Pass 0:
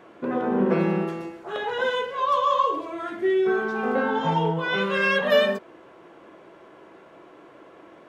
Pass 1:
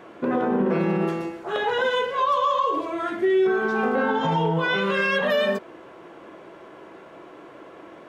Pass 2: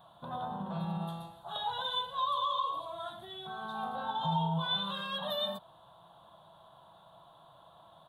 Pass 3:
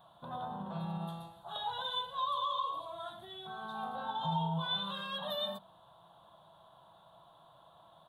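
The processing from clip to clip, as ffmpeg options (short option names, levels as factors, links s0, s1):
-af "alimiter=limit=0.119:level=0:latency=1:release=76,volume=1.68"
-af "firequalizer=gain_entry='entry(160,0);entry(260,-22);entry(400,-27);entry(660,-3);entry(940,-1);entry(2200,-27);entry(3600,10);entry(5200,-20);entry(10000,5)':delay=0.05:min_phase=1,volume=0.501"
-af "bandreject=f=46.92:t=h:w=4,bandreject=f=93.84:t=h:w=4,bandreject=f=140.76:t=h:w=4,bandreject=f=187.68:t=h:w=4,bandreject=f=234.6:t=h:w=4,bandreject=f=281.52:t=h:w=4,volume=0.75"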